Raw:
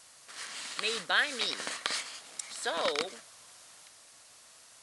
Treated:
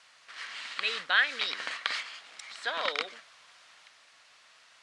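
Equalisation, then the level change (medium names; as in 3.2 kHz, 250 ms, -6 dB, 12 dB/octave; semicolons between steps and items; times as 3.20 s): high-pass 80 Hz; low-pass 2.5 kHz 12 dB/octave; tilt shelf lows -9.5 dB; 0.0 dB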